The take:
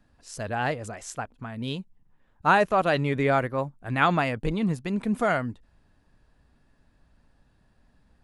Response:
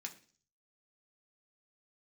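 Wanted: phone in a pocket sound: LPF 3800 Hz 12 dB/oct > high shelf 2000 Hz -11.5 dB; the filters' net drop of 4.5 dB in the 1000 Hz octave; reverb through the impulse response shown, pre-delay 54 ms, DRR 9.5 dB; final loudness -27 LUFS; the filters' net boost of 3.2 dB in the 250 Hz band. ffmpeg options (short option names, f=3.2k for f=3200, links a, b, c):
-filter_complex "[0:a]equalizer=f=250:t=o:g=4.5,equalizer=f=1k:t=o:g=-3.5,asplit=2[a][b];[1:a]atrim=start_sample=2205,adelay=54[c];[b][c]afir=irnorm=-1:irlink=0,volume=-6.5dB[d];[a][d]amix=inputs=2:normalize=0,lowpass=3.8k,highshelf=f=2k:g=-11.5,volume=-0.5dB"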